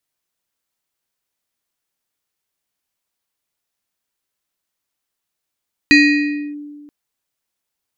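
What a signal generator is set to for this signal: FM tone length 0.98 s, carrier 293 Hz, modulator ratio 7.46, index 1.3, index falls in 0.64 s linear, decay 1.73 s, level -4.5 dB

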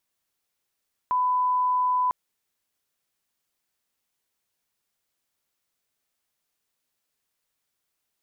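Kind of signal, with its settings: line-up tone -20 dBFS 1.00 s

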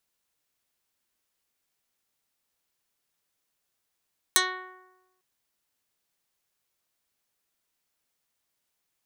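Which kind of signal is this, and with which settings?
plucked string F#4, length 0.85 s, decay 1.08 s, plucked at 0.15, dark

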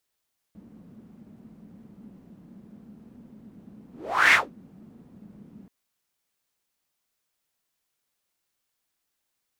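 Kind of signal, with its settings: whoosh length 5.13 s, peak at 3.78 s, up 0.46 s, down 0.19 s, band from 210 Hz, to 2 kHz, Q 5.1, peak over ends 33 dB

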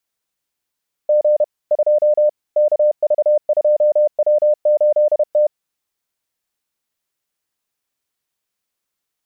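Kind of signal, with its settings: Morse "G 2 KV2W8T" 31 wpm 600 Hz -10 dBFS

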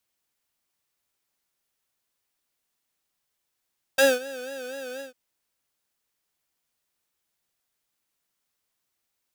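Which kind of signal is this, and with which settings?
synth patch with vibrato C5, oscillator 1 square, interval +19 st, detune 27 cents, sub -7 dB, noise -14 dB, filter highpass, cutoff 200 Hz, Q 0.87, filter envelope 2.5 oct, filter decay 0.06 s, filter sustain 30%, attack 8.6 ms, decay 0.20 s, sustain -21.5 dB, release 0.13 s, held 1.02 s, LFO 4.1 Hz, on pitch 93 cents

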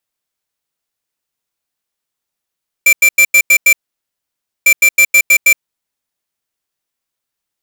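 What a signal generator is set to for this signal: beep pattern square 2.35 kHz, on 0.07 s, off 0.09 s, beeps 6, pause 0.93 s, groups 2, -7 dBFS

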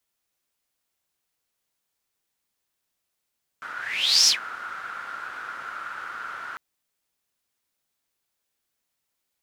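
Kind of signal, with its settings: whoosh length 2.95 s, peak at 0.66 s, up 0.56 s, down 0.12 s, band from 1.4 kHz, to 5.5 kHz, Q 9.7, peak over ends 19 dB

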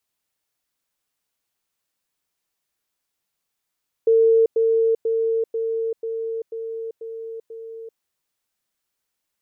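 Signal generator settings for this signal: level ladder 452 Hz -12 dBFS, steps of -3 dB, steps 8, 0.39 s 0.10 s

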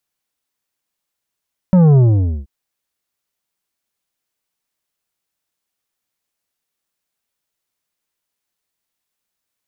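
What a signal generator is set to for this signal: sub drop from 190 Hz, over 0.73 s, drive 9 dB, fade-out 0.49 s, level -7.5 dB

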